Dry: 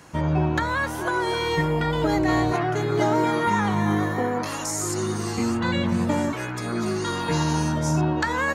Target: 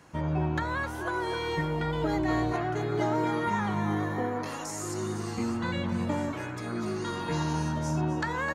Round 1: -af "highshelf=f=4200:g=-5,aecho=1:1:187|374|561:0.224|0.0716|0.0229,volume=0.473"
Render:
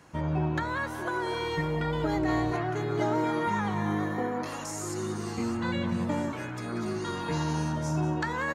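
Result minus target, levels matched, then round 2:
echo 71 ms early
-af "highshelf=f=4200:g=-5,aecho=1:1:258|516|774:0.224|0.0716|0.0229,volume=0.473"

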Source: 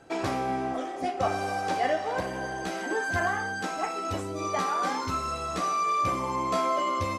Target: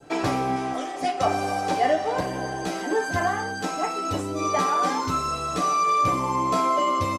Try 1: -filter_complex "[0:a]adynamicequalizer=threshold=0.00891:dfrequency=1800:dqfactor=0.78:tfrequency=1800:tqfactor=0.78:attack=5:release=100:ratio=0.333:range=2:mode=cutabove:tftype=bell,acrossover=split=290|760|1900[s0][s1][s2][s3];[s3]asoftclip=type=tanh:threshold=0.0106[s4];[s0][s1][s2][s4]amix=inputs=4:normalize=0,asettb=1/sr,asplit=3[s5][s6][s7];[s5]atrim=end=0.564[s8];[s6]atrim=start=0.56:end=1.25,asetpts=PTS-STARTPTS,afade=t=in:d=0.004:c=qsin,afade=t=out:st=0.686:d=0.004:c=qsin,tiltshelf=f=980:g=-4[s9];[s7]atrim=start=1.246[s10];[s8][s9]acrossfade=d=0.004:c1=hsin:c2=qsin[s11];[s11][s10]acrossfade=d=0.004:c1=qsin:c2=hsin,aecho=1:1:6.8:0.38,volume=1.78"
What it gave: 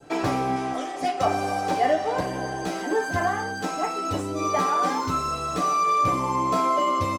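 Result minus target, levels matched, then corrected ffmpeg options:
saturation: distortion +12 dB
-filter_complex "[0:a]adynamicequalizer=threshold=0.00891:dfrequency=1800:dqfactor=0.78:tfrequency=1800:tqfactor=0.78:attack=5:release=100:ratio=0.333:range=2:mode=cutabove:tftype=bell,acrossover=split=290|760|1900[s0][s1][s2][s3];[s3]asoftclip=type=tanh:threshold=0.0282[s4];[s0][s1][s2][s4]amix=inputs=4:normalize=0,asettb=1/sr,asplit=3[s5][s6][s7];[s5]atrim=end=0.564[s8];[s6]atrim=start=0.56:end=1.25,asetpts=PTS-STARTPTS,afade=t=in:d=0.004:c=qsin,afade=t=out:st=0.686:d=0.004:c=qsin,tiltshelf=f=980:g=-4[s9];[s7]atrim=start=1.246[s10];[s8][s9]acrossfade=d=0.004:c1=hsin:c2=qsin[s11];[s11][s10]acrossfade=d=0.004:c1=qsin:c2=hsin,aecho=1:1:6.8:0.38,volume=1.78"

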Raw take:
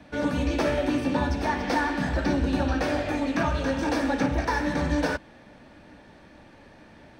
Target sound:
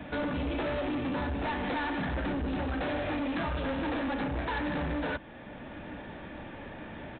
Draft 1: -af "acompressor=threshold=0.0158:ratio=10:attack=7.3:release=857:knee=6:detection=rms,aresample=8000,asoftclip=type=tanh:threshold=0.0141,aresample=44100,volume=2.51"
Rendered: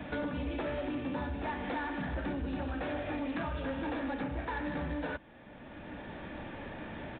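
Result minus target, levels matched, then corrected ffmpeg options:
compression: peak gain reduction +8 dB
-af "acompressor=threshold=0.0447:ratio=10:attack=7.3:release=857:knee=6:detection=rms,aresample=8000,asoftclip=type=tanh:threshold=0.0141,aresample=44100,volume=2.51"

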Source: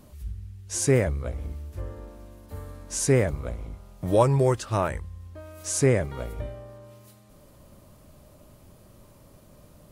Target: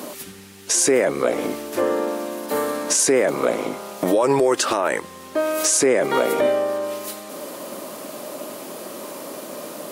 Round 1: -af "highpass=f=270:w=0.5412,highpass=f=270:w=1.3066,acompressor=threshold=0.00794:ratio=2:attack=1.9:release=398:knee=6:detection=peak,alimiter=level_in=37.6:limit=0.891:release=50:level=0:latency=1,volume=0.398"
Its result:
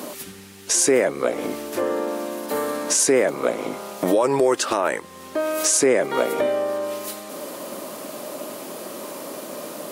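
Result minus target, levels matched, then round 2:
compression: peak gain reduction +5 dB
-af "highpass=f=270:w=0.5412,highpass=f=270:w=1.3066,acompressor=threshold=0.0251:ratio=2:attack=1.9:release=398:knee=6:detection=peak,alimiter=level_in=37.6:limit=0.891:release=50:level=0:latency=1,volume=0.398"

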